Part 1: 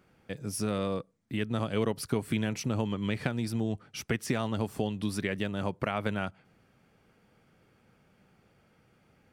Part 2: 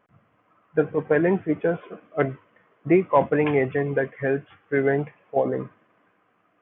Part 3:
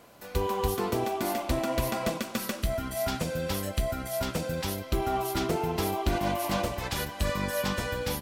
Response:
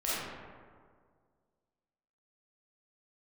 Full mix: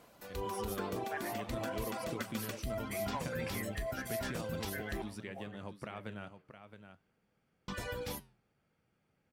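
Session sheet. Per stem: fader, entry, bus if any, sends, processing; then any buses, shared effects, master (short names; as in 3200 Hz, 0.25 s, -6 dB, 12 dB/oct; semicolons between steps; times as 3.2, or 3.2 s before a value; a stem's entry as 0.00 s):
-9.0 dB, 0.00 s, no send, echo send -10 dB, dry
-9.5 dB, 0.00 s, no send, no echo send, Chebyshev high-pass 1400 Hz, order 2
-1.0 dB, 0.00 s, muted 5.02–7.68, no send, no echo send, reverb removal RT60 0.67 s; limiter -24.5 dBFS, peak gain reduction 10 dB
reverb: off
echo: echo 0.669 s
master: flange 0.53 Hz, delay 3.8 ms, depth 10 ms, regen -84%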